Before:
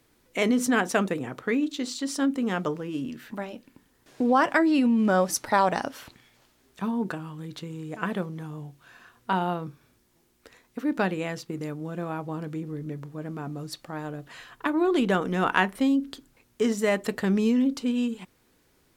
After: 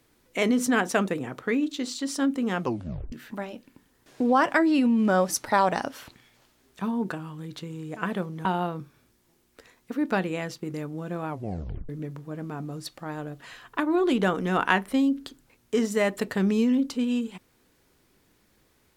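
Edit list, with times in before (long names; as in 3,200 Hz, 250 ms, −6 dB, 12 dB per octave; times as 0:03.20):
0:02.60: tape stop 0.52 s
0:08.45–0:09.32: remove
0:12.15: tape stop 0.61 s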